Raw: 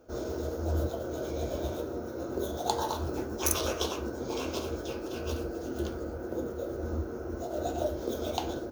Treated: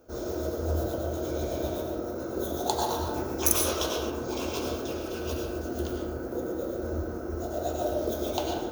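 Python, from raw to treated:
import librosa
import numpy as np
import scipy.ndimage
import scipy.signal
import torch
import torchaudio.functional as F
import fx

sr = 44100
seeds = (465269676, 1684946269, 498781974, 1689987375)

y = fx.high_shelf(x, sr, hz=9700.0, db=8.5)
y = fx.rev_freeverb(y, sr, rt60_s=1.1, hf_ratio=0.45, predelay_ms=65, drr_db=1.0)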